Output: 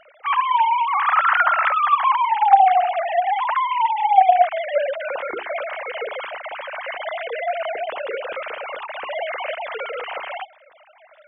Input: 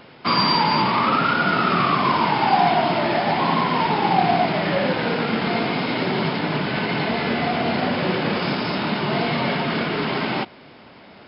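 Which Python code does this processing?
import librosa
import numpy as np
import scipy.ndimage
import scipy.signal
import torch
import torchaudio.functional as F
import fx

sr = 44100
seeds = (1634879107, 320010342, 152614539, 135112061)

y = fx.sine_speech(x, sr)
y = fx.hum_notches(y, sr, base_hz=60, count=7)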